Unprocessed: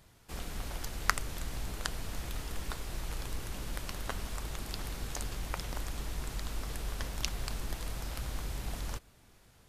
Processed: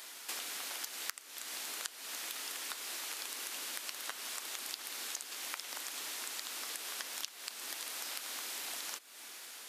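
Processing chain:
Butterworth high-pass 250 Hz 36 dB per octave
tilt shelving filter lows −9.5 dB, about 930 Hz
downward compressor 8 to 1, threshold −49 dBFS, peak gain reduction 32 dB
level +10 dB

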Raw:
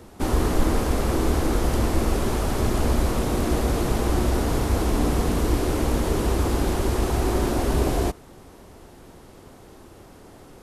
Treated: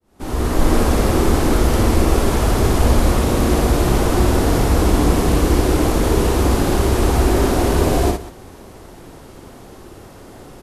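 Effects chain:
fade in at the beginning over 0.74 s
multi-tap delay 58/188 ms −3.5/−15.5 dB
level +5.5 dB

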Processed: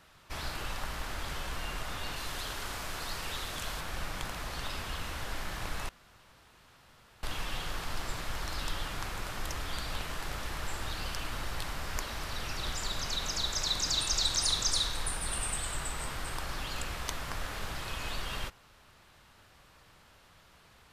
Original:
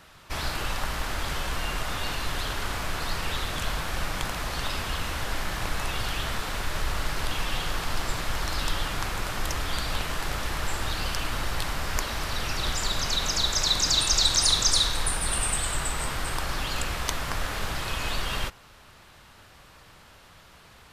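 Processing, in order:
0:02.16–0:03.81: bass and treble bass −3 dB, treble +4 dB
0:05.89–0:07.23: fill with room tone
level −7.5 dB

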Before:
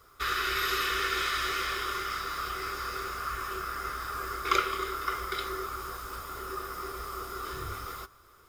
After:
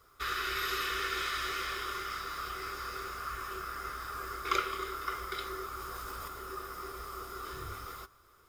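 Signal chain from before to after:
0:05.75–0:06.28: envelope flattener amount 100%
level −4.5 dB

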